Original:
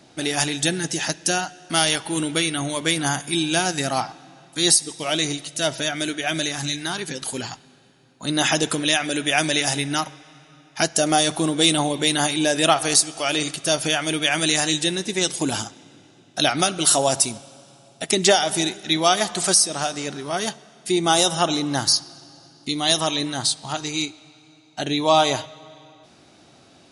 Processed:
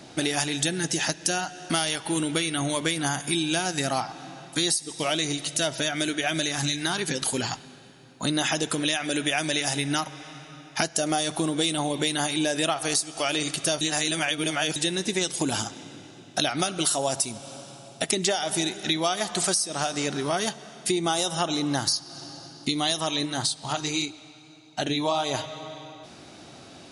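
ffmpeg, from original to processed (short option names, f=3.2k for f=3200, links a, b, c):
-filter_complex "[0:a]asplit=3[a][b][c];[a]afade=t=out:st=23.25:d=0.02[d];[b]flanger=delay=0.2:depth=5.4:regen=-64:speed=1.7:shape=sinusoidal,afade=t=in:st=23.25:d=0.02,afade=t=out:st=25.33:d=0.02[e];[c]afade=t=in:st=25.33:d=0.02[f];[d][e][f]amix=inputs=3:normalize=0,asplit=3[g][h][i];[g]atrim=end=13.812[j];[h]atrim=start=13.808:end=14.762,asetpts=PTS-STARTPTS,areverse[k];[i]atrim=start=14.758[l];[j][k]acrossfade=d=0.004:c1=hsin:c2=hsin[m];[m][l]acrossfade=d=0.004:c1=hsin:c2=hsin,acompressor=threshold=-29dB:ratio=5,volume=5.5dB"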